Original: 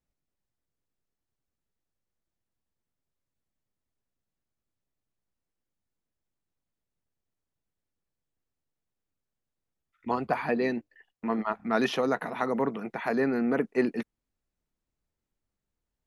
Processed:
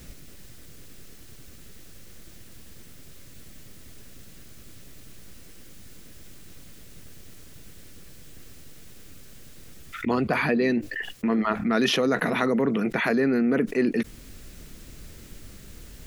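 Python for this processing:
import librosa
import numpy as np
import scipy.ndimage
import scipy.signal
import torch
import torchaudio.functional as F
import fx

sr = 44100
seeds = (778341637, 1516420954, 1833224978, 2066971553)

y = fx.peak_eq(x, sr, hz=870.0, db=-11.0, octaves=1.0)
y = fx.env_flatten(y, sr, amount_pct=70)
y = F.gain(torch.from_numpy(y), 2.0).numpy()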